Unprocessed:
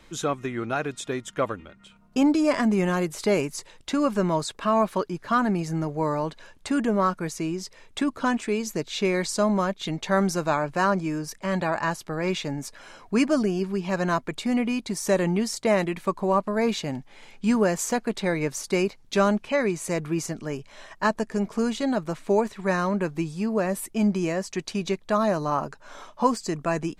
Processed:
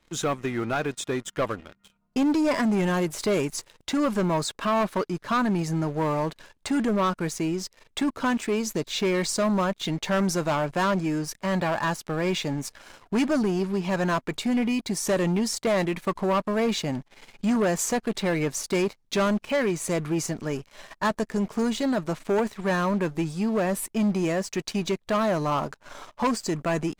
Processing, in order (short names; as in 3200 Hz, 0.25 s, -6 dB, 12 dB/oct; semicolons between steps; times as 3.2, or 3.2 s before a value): sample leveller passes 3; gain -9 dB